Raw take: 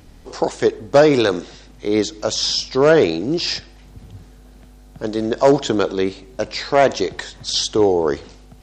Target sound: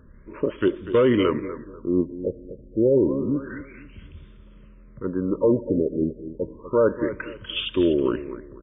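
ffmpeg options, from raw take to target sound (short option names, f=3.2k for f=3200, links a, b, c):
-filter_complex "[0:a]asetrate=37084,aresample=44100,atempo=1.18921,asuperstop=centerf=750:order=12:qfactor=2.5,asplit=2[a][b];[b]aecho=0:1:244|488|732:0.224|0.0694|0.0215[c];[a][c]amix=inputs=2:normalize=0,alimiter=level_in=5dB:limit=-1dB:release=50:level=0:latency=1,afftfilt=real='re*lt(b*sr/1024,780*pow(3700/780,0.5+0.5*sin(2*PI*0.29*pts/sr)))':imag='im*lt(b*sr/1024,780*pow(3700/780,0.5+0.5*sin(2*PI*0.29*pts/sr)))':win_size=1024:overlap=0.75,volume=-9dB"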